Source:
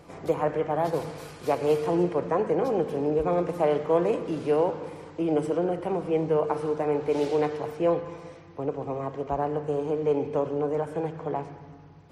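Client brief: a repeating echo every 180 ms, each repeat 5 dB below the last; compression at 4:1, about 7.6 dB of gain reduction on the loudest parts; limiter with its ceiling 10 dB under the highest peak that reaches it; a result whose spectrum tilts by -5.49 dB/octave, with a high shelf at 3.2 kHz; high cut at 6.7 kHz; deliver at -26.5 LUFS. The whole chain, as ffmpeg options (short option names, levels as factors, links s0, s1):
-af "lowpass=6700,highshelf=f=3200:g=-5,acompressor=threshold=0.0398:ratio=4,alimiter=level_in=1.58:limit=0.0631:level=0:latency=1,volume=0.631,aecho=1:1:180|360|540|720|900|1080|1260:0.562|0.315|0.176|0.0988|0.0553|0.031|0.0173,volume=2.82"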